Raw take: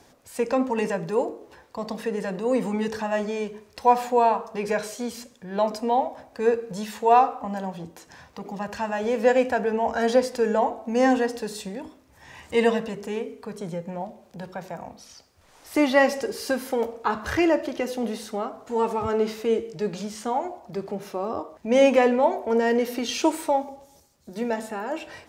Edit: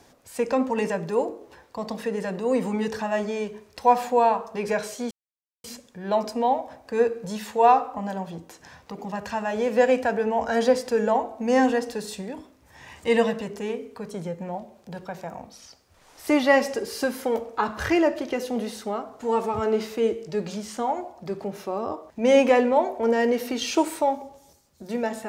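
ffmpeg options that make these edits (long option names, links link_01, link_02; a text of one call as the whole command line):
ffmpeg -i in.wav -filter_complex "[0:a]asplit=2[link_01][link_02];[link_01]atrim=end=5.11,asetpts=PTS-STARTPTS,afade=type=out:start_time=5.106:duration=0.004:curve=hsin,apad=pad_dur=0.53[link_03];[link_02]atrim=start=5.11,asetpts=PTS-STARTPTS,afade=type=in:duration=0.004:curve=hsin[link_04];[link_03][link_04]concat=n=2:v=0:a=1" out.wav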